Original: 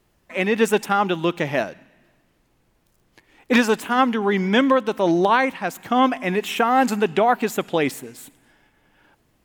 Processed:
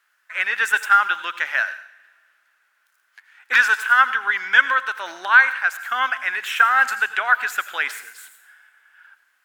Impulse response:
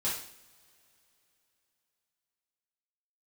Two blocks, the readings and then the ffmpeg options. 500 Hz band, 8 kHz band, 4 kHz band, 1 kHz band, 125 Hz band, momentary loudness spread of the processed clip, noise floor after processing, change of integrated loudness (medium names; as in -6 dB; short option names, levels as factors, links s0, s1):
-19.5 dB, -1.0 dB, 0.0 dB, 0.0 dB, under -35 dB, 10 LU, -66 dBFS, +2.0 dB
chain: -filter_complex "[0:a]highpass=f=1500:t=q:w=6.2,asplit=2[s0][s1];[1:a]atrim=start_sample=2205,highshelf=f=6800:g=9.5,adelay=80[s2];[s1][s2]afir=irnorm=-1:irlink=0,volume=0.1[s3];[s0][s3]amix=inputs=2:normalize=0,volume=0.794"